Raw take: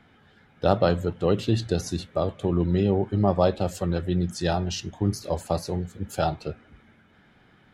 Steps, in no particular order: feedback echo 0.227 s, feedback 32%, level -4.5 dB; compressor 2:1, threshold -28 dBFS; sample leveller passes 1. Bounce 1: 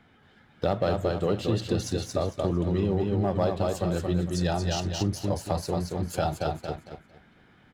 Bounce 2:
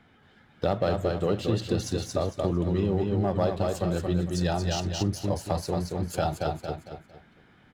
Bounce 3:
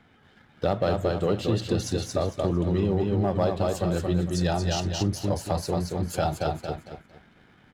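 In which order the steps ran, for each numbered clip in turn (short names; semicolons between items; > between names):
feedback echo > sample leveller > compressor; sample leveller > feedback echo > compressor; feedback echo > compressor > sample leveller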